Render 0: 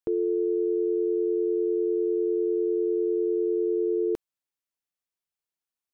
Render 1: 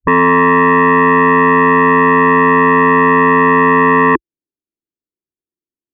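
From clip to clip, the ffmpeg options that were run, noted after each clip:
-af "afwtdn=0.0158,lowpass=f=340:t=q:w=3.6,aeval=exprs='0.266*sin(PI/2*3.55*val(0)/0.266)':c=same,volume=5dB"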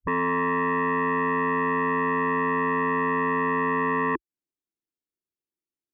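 -af "alimiter=limit=-17dB:level=0:latency=1:release=217,volume=-4.5dB"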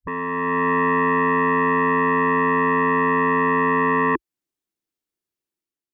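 -af "dynaudnorm=f=140:g=7:m=8dB,volume=-2.5dB"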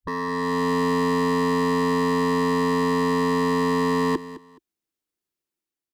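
-filter_complex "[0:a]acrossover=split=190|680[a][b][c];[c]asoftclip=type=hard:threshold=-27.5dB[d];[a][b][d]amix=inputs=3:normalize=0,aecho=1:1:211|422:0.168|0.0369"

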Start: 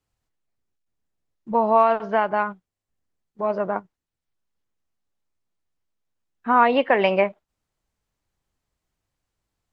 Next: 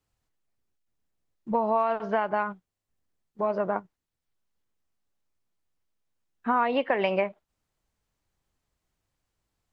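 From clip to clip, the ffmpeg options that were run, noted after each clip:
-af "acompressor=threshold=-23dB:ratio=3"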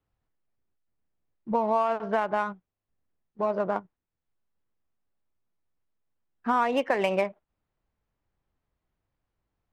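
-af "adynamicsmooth=sensitivity=7.5:basefreq=2.8k"

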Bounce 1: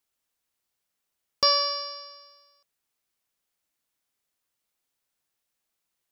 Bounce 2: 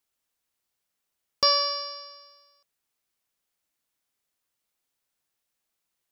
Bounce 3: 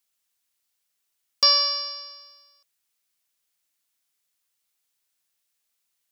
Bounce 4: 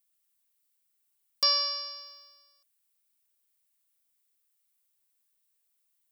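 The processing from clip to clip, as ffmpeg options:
-af anull
-af "tiltshelf=f=1.5k:g=-5.5"
-af "aexciter=amount=2.5:drive=2.8:freq=8.3k,volume=-6.5dB"

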